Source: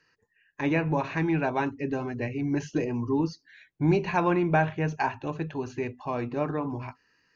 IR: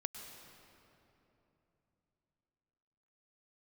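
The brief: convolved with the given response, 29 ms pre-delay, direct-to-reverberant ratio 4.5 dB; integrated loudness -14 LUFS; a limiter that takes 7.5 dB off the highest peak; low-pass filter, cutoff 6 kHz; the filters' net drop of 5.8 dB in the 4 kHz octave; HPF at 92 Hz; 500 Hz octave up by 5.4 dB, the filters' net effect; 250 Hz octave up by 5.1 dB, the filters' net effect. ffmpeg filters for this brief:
-filter_complex "[0:a]highpass=92,lowpass=6000,equalizer=f=250:t=o:g=5,equalizer=f=500:t=o:g=5.5,equalizer=f=4000:t=o:g=-8,alimiter=limit=0.168:level=0:latency=1,asplit=2[s0][s1];[1:a]atrim=start_sample=2205,adelay=29[s2];[s1][s2]afir=irnorm=-1:irlink=0,volume=0.668[s3];[s0][s3]amix=inputs=2:normalize=0,volume=3.55"

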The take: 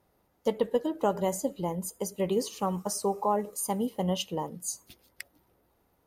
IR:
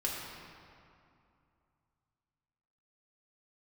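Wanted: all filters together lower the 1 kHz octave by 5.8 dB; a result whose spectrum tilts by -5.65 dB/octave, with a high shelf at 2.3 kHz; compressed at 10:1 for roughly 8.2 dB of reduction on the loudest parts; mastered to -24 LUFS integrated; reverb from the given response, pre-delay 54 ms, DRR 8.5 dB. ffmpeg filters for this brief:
-filter_complex "[0:a]equalizer=f=1000:t=o:g=-6,highshelf=f=2300:g=-9,acompressor=threshold=0.0282:ratio=10,asplit=2[s0][s1];[1:a]atrim=start_sample=2205,adelay=54[s2];[s1][s2]afir=irnorm=-1:irlink=0,volume=0.224[s3];[s0][s3]amix=inputs=2:normalize=0,volume=4.73"

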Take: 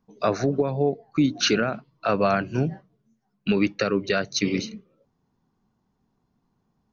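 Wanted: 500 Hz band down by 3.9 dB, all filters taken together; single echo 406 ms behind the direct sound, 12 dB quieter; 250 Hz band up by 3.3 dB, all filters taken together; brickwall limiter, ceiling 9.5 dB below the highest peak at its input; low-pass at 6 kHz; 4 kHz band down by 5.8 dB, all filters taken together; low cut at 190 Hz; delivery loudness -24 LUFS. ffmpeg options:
-af "highpass=190,lowpass=6000,equalizer=f=250:t=o:g=8,equalizer=f=500:t=o:g=-7.5,equalizer=f=4000:t=o:g=-6.5,alimiter=limit=0.119:level=0:latency=1,aecho=1:1:406:0.251,volume=1.78"

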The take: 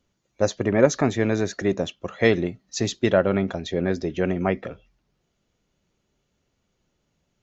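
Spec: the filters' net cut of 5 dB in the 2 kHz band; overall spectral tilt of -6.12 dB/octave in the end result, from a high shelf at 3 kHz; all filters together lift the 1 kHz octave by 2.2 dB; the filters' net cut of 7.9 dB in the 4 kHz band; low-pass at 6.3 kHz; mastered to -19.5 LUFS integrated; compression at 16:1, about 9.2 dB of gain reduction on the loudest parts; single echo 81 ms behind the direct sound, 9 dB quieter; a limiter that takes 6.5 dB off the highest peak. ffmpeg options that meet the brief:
-af "lowpass=6300,equalizer=f=1000:t=o:g=5.5,equalizer=f=2000:t=o:g=-5.5,highshelf=f=3000:g=-5.5,equalizer=f=4000:t=o:g=-3.5,acompressor=threshold=0.112:ratio=16,alimiter=limit=0.168:level=0:latency=1,aecho=1:1:81:0.355,volume=2.99"

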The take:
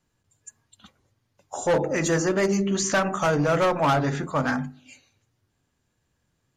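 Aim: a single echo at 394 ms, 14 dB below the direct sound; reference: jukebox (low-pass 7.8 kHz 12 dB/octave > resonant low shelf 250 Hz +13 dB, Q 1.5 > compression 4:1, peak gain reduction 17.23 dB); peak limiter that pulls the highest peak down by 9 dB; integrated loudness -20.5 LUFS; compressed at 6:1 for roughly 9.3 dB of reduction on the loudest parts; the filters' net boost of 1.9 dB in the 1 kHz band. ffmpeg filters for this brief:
-af "equalizer=f=1000:t=o:g=3.5,acompressor=threshold=0.0447:ratio=6,alimiter=level_in=1.26:limit=0.0631:level=0:latency=1,volume=0.794,lowpass=7800,lowshelf=f=250:t=q:w=1.5:g=13,aecho=1:1:394:0.2,acompressor=threshold=0.0112:ratio=4,volume=10"

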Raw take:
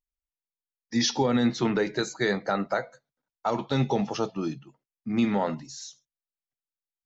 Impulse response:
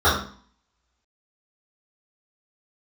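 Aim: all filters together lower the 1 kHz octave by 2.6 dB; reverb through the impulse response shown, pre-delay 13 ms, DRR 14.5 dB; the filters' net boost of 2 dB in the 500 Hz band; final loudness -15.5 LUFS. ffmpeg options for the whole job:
-filter_complex "[0:a]equalizer=f=500:t=o:g=3.5,equalizer=f=1000:t=o:g=-5,asplit=2[s0][s1];[1:a]atrim=start_sample=2205,adelay=13[s2];[s1][s2]afir=irnorm=-1:irlink=0,volume=0.0141[s3];[s0][s3]amix=inputs=2:normalize=0,volume=3.55"

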